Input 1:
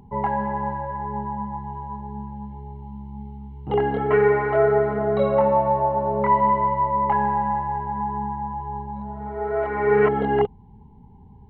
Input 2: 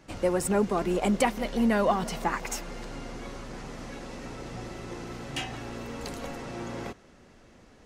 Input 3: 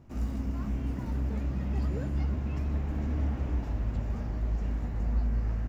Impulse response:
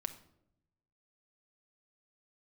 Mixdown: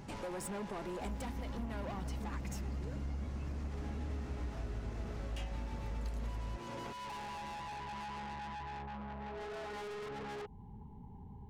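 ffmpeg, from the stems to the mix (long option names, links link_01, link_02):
-filter_complex "[0:a]acompressor=threshold=-22dB:ratio=6,asoftclip=type=tanh:threshold=-37.5dB,volume=-2.5dB[link_01];[1:a]asoftclip=type=tanh:threshold=-27.5dB,volume=-1dB[link_02];[2:a]adelay=900,volume=2.5dB[link_03];[link_01][link_02][link_03]amix=inputs=3:normalize=0,acompressor=threshold=-44dB:ratio=2.5"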